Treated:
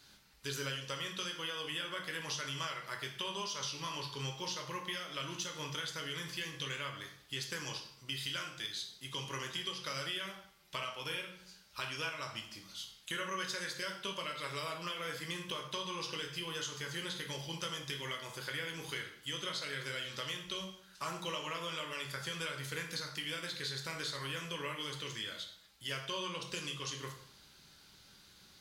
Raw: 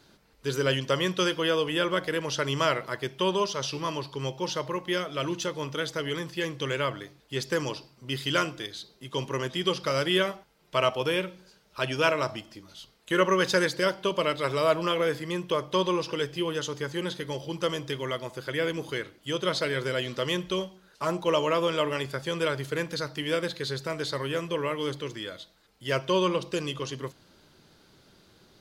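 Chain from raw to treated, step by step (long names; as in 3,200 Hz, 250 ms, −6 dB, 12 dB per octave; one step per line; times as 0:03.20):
guitar amp tone stack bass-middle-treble 5-5-5
downward compressor 10 to 1, threshold −45 dBFS, peak gain reduction 15 dB
dense smooth reverb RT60 0.64 s, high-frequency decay 0.85×, DRR 1.5 dB
level +7.5 dB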